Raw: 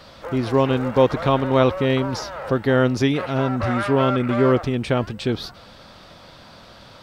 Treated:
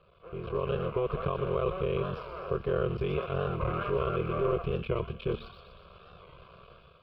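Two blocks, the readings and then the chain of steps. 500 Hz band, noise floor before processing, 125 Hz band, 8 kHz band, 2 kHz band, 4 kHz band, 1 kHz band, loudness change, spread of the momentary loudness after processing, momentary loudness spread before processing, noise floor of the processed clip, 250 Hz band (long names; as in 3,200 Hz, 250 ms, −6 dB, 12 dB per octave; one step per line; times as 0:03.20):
−10.0 dB, −46 dBFS, −10.5 dB, below −35 dB, −14.5 dB, −16.0 dB, −11.5 dB, −11.5 dB, 6 LU, 8 LU, −57 dBFS, −16.5 dB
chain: sub-harmonics by changed cycles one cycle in 3, muted
EQ curve with evenly spaced ripples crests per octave 0.77, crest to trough 8 dB
brickwall limiter −14 dBFS, peak gain reduction 10.5 dB
automatic gain control gain up to 11 dB
high-frequency loss of the air 440 metres
phaser with its sweep stopped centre 1,300 Hz, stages 8
tuned comb filter 230 Hz, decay 0.59 s, harmonics odd, mix 70%
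on a send: delay with a high-pass on its return 122 ms, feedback 57%, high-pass 3,700 Hz, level −3 dB
on the sum: wow of a warped record 45 rpm, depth 100 cents
level −2 dB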